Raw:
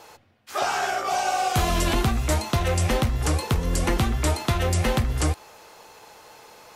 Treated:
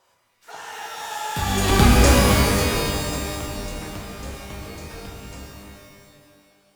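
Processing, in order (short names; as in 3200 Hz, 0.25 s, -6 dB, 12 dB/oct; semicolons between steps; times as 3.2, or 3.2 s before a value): Doppler pass-by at 1.91, 43 m/s, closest 5.4 m; shimmer reverb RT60 1.8 s, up +12 st, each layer -2 dB, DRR -0.5 dB; gain +7.5 dB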